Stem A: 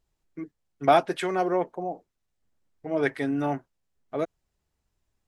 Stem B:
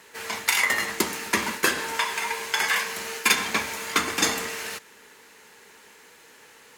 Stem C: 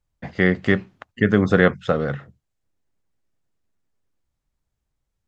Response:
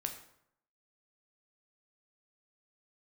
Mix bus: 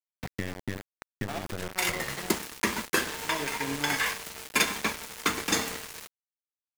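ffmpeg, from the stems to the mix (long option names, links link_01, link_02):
-filter_complex "[0:a]highpass=frequency=150:poles=1,equalizer=frequency=880:width=0.38:gain=-4.5,adelay=400,volume=-3.5dB,asplit=2[link_01][link_02];[link_02]volume=-14.5dB[link_03];[1:a]aeval=exprs='val(0)+0.002*(sin(2*PI*50*n/s)+sin(2*PI*2*50*n/s)/2+sin(2*PI*3*50*n/s)/3+sin(2*PI*4*50*n/s)/4+sin(2*PI*5*50*n/s)/5)':channel_layout=same,adelay=1300,volume=-4.5dB[link_04];[2:a]aeval=exprs='(tanh(3.98*val(0)+0.7)-tanh(0.7))/3.98':channel_layout=same,volume=-0.5dB,afade=type=out:start_time=1.04:duration=0.33:silence=0.251189,asplit=3[link_05][link_06][link_07];[link_06]volume=-22.5dB[link_08];[link_07]apad=whole_len=356091[link_09];[link_04][link_09]sidechaincompress=threshold=-43dB:ratio=4:attack=38:release=157[link_10];[link_01][link_05]amix=inputs=2:normalize=0,equalizer=frequency=410:width_type=o:width=1.8:gain=-4,acompressor=threshold=-33dB:ratio=10,volume=0dB[link_11];[link_03][link_08]amix=inputs=2:normalize=0,aecho=0:1:73:1[link_12];[link_10][link_11][link_12]amix=inputs=3:normalize=0,lowshelf=frequency=350:gain=6,aeval=exprs='val(0)*gte(abs(val(0)),0.0266)':channel_layout=same"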